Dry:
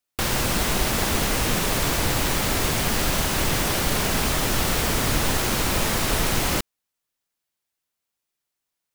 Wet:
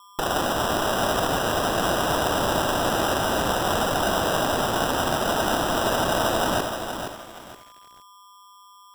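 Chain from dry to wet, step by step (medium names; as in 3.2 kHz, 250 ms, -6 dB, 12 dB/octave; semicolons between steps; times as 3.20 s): tape echo 83 ms, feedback 65%, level -3 dB, low-pass 1 kHz; whistle 1.2 kHz -49 dBFS; cabinet simulation 350–6700 Hz, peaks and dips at 440 Hz -9 dB, 640 Hz +7 dB, 1.5 kHz +7 dB, 5.8 kHz +4 dB; sample-and-hold 20×; bit-crushed delay 471 ms, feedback 35%, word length 7-bit, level -7 dB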